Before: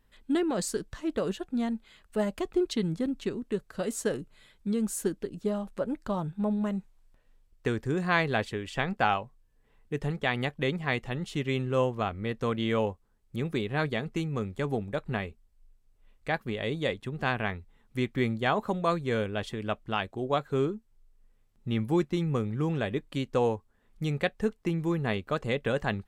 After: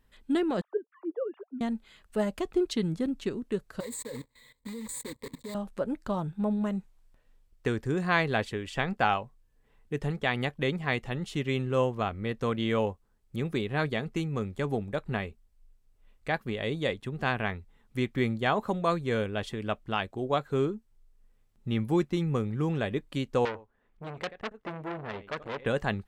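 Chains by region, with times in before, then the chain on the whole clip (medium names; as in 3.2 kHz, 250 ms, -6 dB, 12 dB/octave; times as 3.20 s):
0.61–1.61 s: formants replaced by sine waves + Butterworth band-pass 680 Hz, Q 0.81
3.80–5.55 s: block-companded coder 3-bit + rippled EQ curve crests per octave 1, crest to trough 16 dB + level held to a coarse grid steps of 19 dB
23.45–25.66 s: tone controls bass -6 dB, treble -15 dB + delay 86 ms -19 dB + transformer saturation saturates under 3.2 kHz
whole clip: none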